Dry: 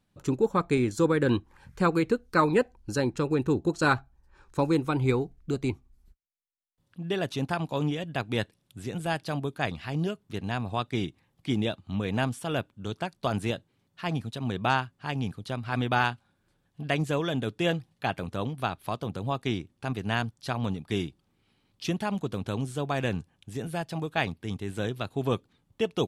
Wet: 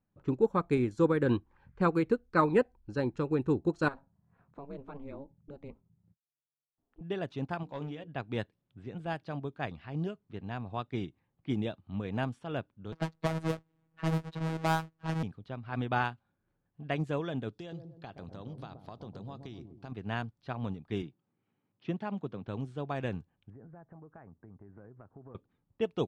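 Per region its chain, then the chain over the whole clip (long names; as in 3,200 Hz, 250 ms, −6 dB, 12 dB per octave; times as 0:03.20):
0:03.88–0:07.01: parametric band 660 Hz +9.5 dB 0.63 octaves + downward compressor 2 to 1, threshold −36 dBFS + ring modulation 140 Hz
0:07.63–0:08.08: low-shelf EQ 290 Hz −4.5 dB + hard clipping −24.5 dBFS + mains-hum notches 60/120/180/240/300/360/420/480 Hz
0:12.92–0:15.23: each half-wave held at its own peak + phases set to zero 161 Hz + multiband upward and downward compressor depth 40%
0:17.53–0:19.92: high shelf with overshoot 3,400 Hz +11.5 dB, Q 1.5 + downward compressor 16 to 1, threshold −30 dBFS + delay with a low-pass on its return 124 ms, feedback 43%, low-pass 600 Hz, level −5.5 dB
0:21.02–0:22.48: high-pass filter 110 Hz 24 dB per octave + high-frequency loss of the air 72 metres
0:23.50–0:25.35: Butterworth low-pass 1,700 Hz + downward compressor, threshold −40 dBFS
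whole clip: high-shelf EQ 3,100 Hz −11.5 dB; low-pass that shuts in the quiet parts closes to 2,300 Hz, open at −21.5 dBFS; expander for the loud parts 1.5 to 1, over −33 dBFS; level −1 dB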